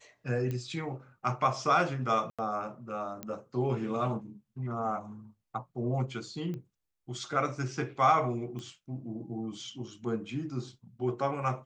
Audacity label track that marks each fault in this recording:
0.510000	0.510000	pop -23 dBFS
2.300000	2.390000	gap 86 ms
3.230000	3.230000	pop -22 dBFS
6.540000	6.540000	pop -28 dBFS
8.590000	8.590000	pop -30 dBFS

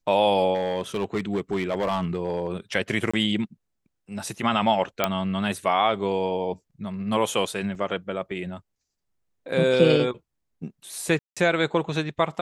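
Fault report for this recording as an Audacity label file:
0.540000	2.480000	clipped -20 dBFS
3.110000	3.130000	gap 25 ms
5.040000	5.040000	pop -6 dBFS
7.750000	7.750000	gap 2.6 ms
11.190000	11.370000	gap 0.176 s

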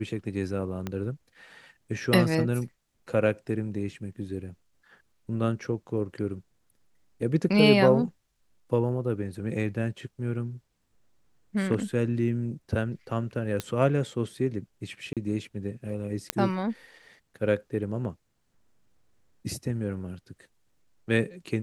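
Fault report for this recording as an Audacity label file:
0.870000	0.870000	pop -18 dBFS
13.600000	13.600000	pop -15 dBFS
15.130000	15.170000	gap 37 ms
16.300000	16.300000	pop -7 dBFS

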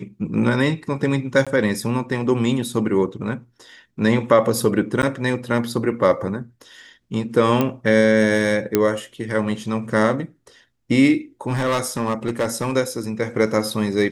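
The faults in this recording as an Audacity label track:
1.450000	1.470000	gap 16 ms
5.020000	5.030000	gap 9.7 ms
7.610000	7.610000	pop -7 dBFS
8.750000	8.750000	pop -3 dBFS
11.480000	12.730000	clipped -16 dBFS

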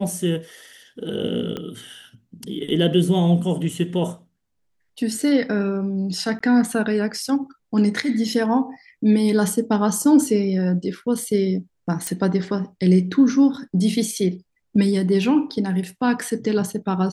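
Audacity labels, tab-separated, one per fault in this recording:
1.570000	1.570000	pop -16 dBFS
6.390000	6.410000	gap 15 ms
12.070000	12.070000	pop -9 dBFS

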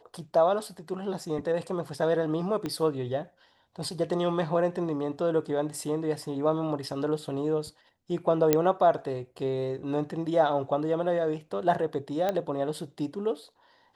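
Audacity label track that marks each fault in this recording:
2.660000	2.660000	pop -19 dBFS
8.530000	8.530000	pop -7 dBFS
12.290000	12.290000	pop -15 dBFS

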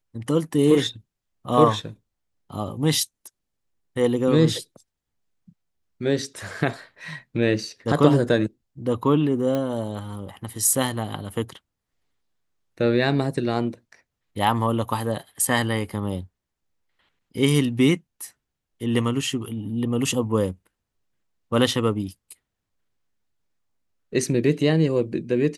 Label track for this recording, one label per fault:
9.550000	9.550000	pop -14 dBFS

